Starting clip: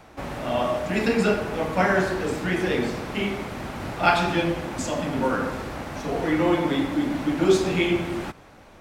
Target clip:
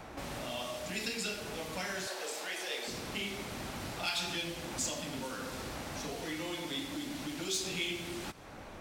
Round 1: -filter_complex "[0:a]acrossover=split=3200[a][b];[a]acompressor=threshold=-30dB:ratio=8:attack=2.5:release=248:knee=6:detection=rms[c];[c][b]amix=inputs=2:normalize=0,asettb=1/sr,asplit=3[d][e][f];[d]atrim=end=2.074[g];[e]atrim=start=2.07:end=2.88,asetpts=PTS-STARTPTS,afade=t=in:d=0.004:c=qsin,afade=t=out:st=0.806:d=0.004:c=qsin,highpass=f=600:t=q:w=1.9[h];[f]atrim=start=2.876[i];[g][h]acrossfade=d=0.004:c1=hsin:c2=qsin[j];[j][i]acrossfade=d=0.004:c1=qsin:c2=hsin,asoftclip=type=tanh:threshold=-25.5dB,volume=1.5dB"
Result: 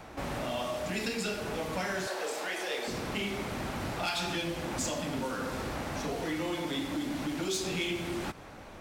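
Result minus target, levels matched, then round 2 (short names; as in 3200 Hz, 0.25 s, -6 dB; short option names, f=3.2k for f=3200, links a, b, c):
compressor: peak gain reduction -7 dB
-filter_complex "[0:a]acrossover=split=3200[a][b];[a]acompressor=threshold=-38dB:ratio=8:attack=2.5:release=248:knee=6:detection=rms[c];[c][b]amix=inputs=2:normalize=0,asettb=1/sr,asplit=3[d][e][f];[d]atrim=end=2.074[g];[e]atrim=start=2.07:end=2.88,asetpts=PTS-STARTPTS,afade=t=in:d=0.004:c=qsin,afade=t=out:st=0.806:d=0.004:c=qsin,highpass=f=600:t=q:w=1.9[h];[f]atrim=start=2.876[i];[g][h]acrossfade=d=0.004:c1=hsin:c2=qsin[j];[j][i]acrossfade=d=0.004:c1=qsin:c2=hsin,asoftclip=type=tanh:threshold=-25.5dB,volume=1.5dB"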